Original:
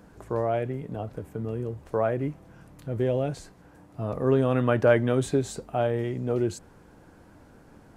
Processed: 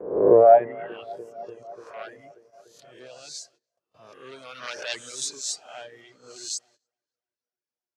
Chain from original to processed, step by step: reverse spectral sustain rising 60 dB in 0.84 s; sine folder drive 8 dB, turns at -5 dBFS; band-pass sweep 440 Hz -> 5.6 kHz, 0.40–1.25 s; filtered feedback delay 293 ms, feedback 74%, low-pass 3.6 kHz, level -13 dB; reverb removal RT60 1.8 s; gate -54 dBFS, range -19 dB; treble shelf 7.4 kHz -6.5 dB; three bands expanded up and down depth 40%; trim +1.5 dB

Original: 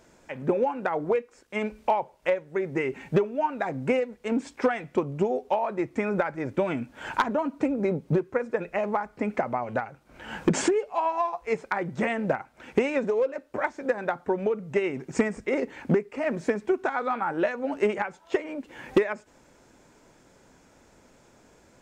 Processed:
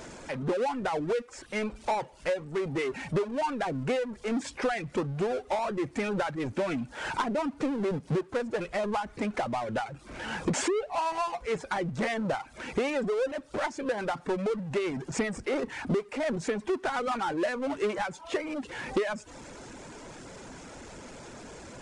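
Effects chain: power-law waveshaper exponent 0.5; resampled via 22.05 kHz; reverb removal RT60 0.58 s; trim -8 dB

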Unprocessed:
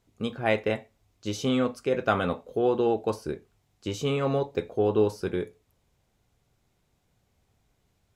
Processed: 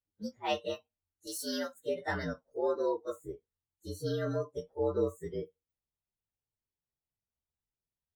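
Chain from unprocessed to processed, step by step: frequency axis rescaled in octaves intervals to 115%; 1.27–1.74 s: tilt EQ +3 dB/octave; spectral noise reduction 19 dB; trim -5.5 dB

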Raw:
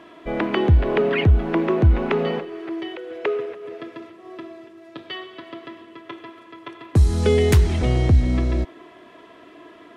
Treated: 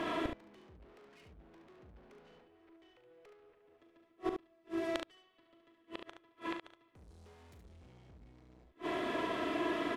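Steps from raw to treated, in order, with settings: dynamic bell 1.2 kHz, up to -4 dB, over -36 dBFS, Q 1.1; valve stage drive 30 dB, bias 0.4; inverted gate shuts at -35 dBFS, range -38 dB; on a send: early reflections 39 ms -9.5 dB, 71 ms -6.5 dB; on the sum: trim +10 dB

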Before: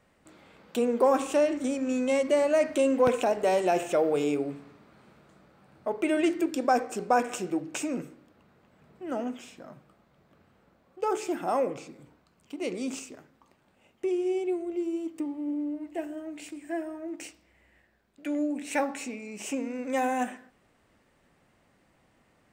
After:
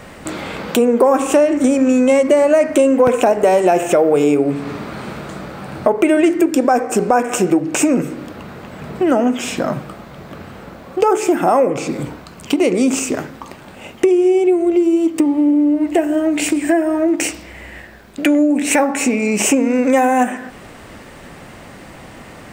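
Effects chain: dynamic bell 4 kHz, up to -8 dB, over -53 dBFS, Q 1.2; compression 4:1, threshold -42 dBFS, peak gain reduction 19.5 dB; loudness maximiser +29.5 dB; trim -1 dB

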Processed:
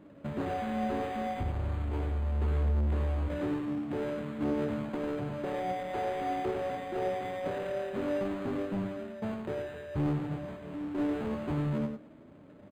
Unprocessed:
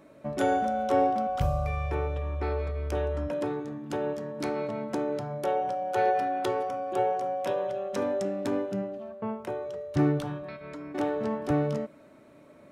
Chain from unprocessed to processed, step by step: square wave that keeps the level; high-pass 46 Hz 6 dB/octave; bass shelf 490 Hz +10.5 dB; compression, threshold -18 dBFS, peak gain reduction 9.5 dB; overload inside the chain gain 18 dB; flange 0.55 Hz, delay 9.8 ms, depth 4.1 ms, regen +48%; on a send: delay 99 ms -7 dB; on the sum: decimation joined by straight lines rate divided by 8×; trim -6.5 dB

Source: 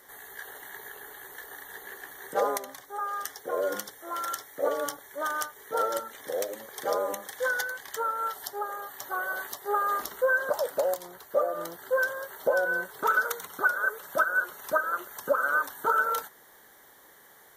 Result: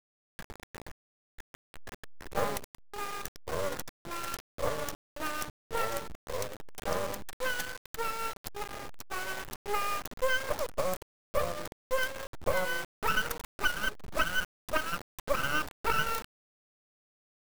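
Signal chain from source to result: send-on-delta sampling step -31 dBFS; half-wave rectifier

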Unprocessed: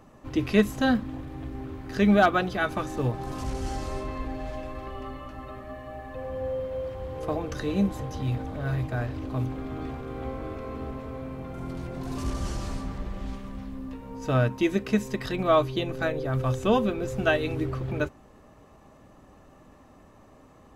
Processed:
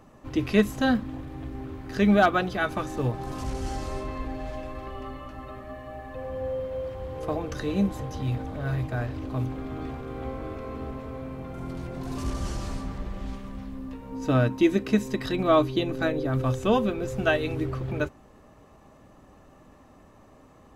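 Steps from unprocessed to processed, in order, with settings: 14.12–16.51 s: small resonant body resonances 290/3900 Hz, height 9 dB

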